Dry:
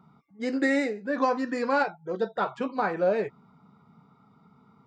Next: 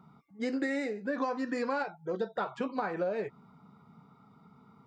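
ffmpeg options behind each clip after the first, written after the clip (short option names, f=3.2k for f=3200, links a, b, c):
-af "acompressor=threshold=-29dB:ratio=6"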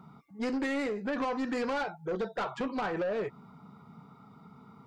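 -af "asoftclip=type=tanh:threshold=-32.5dB,volume=5dB"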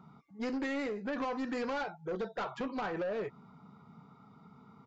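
-af "aresample=16000,aresample=44100,volume=-3.5dB"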